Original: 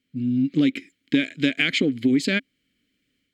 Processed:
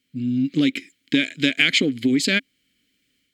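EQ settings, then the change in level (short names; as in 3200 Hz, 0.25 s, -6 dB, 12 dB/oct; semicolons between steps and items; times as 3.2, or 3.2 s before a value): high shelf 2500 Hz +9 dB; 0.0 dB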